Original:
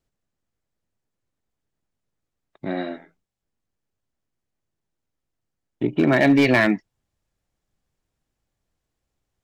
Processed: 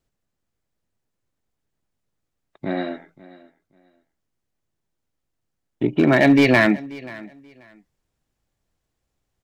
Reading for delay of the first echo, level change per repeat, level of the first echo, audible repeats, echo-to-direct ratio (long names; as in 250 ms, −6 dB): 534 ms, −13.5 dB, −20.5 dB, 2, −20.5 dB